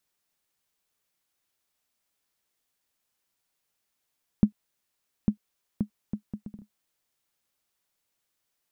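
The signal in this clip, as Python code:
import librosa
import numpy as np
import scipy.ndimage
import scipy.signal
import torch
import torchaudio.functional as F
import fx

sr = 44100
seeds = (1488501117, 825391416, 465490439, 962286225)

y = fx.bouncing_ball(sr, first_gap_s=0.85, ratio=0.62, hz=209.0, decay_ms=94.0, level_db=-8.0)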